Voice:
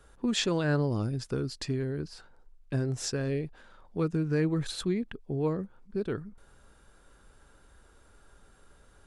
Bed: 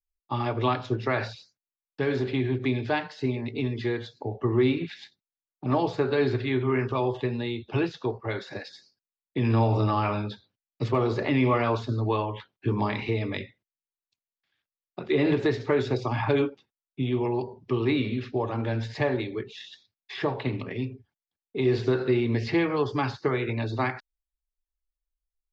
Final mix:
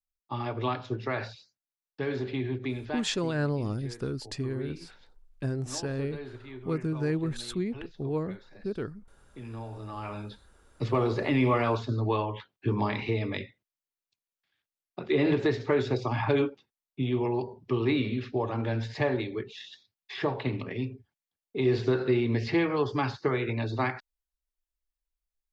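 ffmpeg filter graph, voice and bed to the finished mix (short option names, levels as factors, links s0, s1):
-filter_complex "[0:a]adelay=2700,volume=0.841[s0];[1:a]volume=3.55,afade=t=out:st=2.52:d=0.8:silence=0.237137,afade=t=in:st=9.83:d=1.14:silence=0.158489[s1];[s0][s1]amix=inputs=2:normalize=0"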